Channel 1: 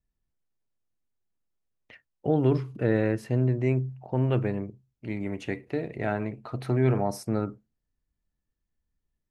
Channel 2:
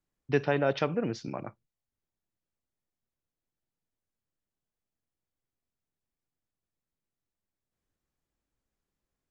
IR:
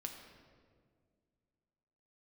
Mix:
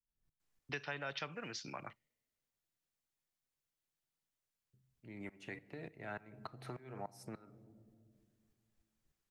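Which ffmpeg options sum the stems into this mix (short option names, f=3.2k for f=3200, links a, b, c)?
-filter_complex "[0:a]acompressor=threshold=-36dB:ratio=2,aeval=exprs='val(0)*pow(10,-25*if(lt(mod(-3.4*n/s,1),2*abs(-3.4)/1000),1-mod(-3.4*n/s,1)/(2*abs(-3.4)/1000),(mod(-3.4*n/s,1)-2*abs(-3.4)/1000)/(1-2*abs(-3.4)/1000))/20)':c=same,volume=1.5dB,asplit=3[a][b][c];[a]atrim=end=1.93,asetpts=PTS-STARTPTS,afade=t=out:st=1.926:d=0.004:c=hsin[d];[b]atrim=start=1.93:end=4.73,asetpts=PTS-STARTPTS,volume=0[e];[c]atrim=start=4.73,asetpts=PTS-STARTPTS,afade=t=in:d=0.004:c=hsin[f];[d][e][f]concat=n=3:v=0:a=1,asplit=2[g][h];[h]volume=-12dB[i];[1:a]tiltshelf=f=860:g=-5.5,adelay=400,volume=-3dB[j];[2:a]atrim=start_sample=2205[k];[i][k]afir=irnorm=-1:irlink=0[l];[g][j][l]amix=inputs=3:normalize=0,equalizer=f=150:w=5.4:g=4.5,acrossover=split=220|940[m][n][o];[m]acompressor=threshold=-55dB:ratio=4[p];[n]acompressor=threshold=-50dB:ratio=4[q];[o]acompressor=threshold=-41dB:ratio=4[r];[p][q][r]amix=inputs=3:normalize=0"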